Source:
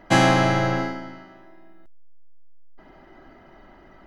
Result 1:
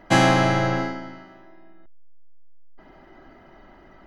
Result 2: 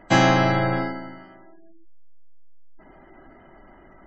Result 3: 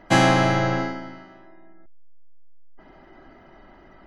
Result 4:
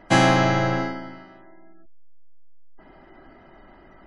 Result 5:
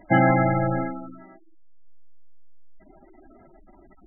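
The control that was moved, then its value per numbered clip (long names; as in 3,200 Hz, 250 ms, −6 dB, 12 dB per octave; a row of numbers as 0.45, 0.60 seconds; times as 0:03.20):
gate on every frequency bin, under each frame's peak: −60, −25, −45, −35, −10 decibels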